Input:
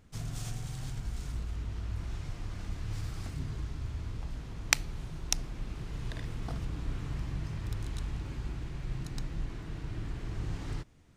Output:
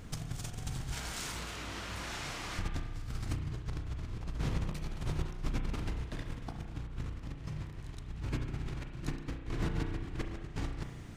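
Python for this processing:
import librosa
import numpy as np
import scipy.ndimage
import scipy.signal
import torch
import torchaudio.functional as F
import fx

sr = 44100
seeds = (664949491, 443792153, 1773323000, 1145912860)

y = fx.highpass(x, sr, hz=980.0, slope=6, at=(0.91, 2.58), fade=0.02)
y = fx.over_compress(y, sr, threshold_db=-42.0, ratio=-0.5)
y = fx.rev_spring(y, sr, rt60_s=1.3, pass_ms=(33,), chirp_ms=70, drr_db=4.5)
y = y * 10.0 ** (5.0 / 20.0)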